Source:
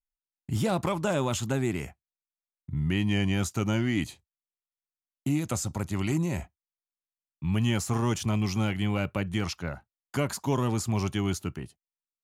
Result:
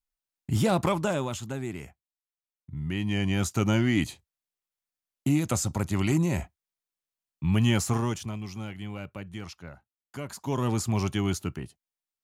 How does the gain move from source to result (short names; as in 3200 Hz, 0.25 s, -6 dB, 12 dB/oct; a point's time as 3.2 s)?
0.93 s +3 dB
1.4 s -6 dB
2.72 s -6 dB
3.6 s +3 dB
7.87 s +3 dB
8.39 s -9.5 dB
10.2 s -9.5 dB
10.69 s +1 dB